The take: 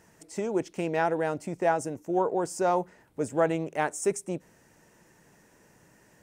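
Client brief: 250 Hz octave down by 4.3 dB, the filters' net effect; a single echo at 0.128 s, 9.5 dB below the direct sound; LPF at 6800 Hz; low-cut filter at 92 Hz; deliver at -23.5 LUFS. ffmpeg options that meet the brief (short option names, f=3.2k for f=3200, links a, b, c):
-af "highpass=92,lowpass=6.8k,equalizer=f=250:t=o:g=-7.5,aecho=1:1:128:0.335,volume=7dB"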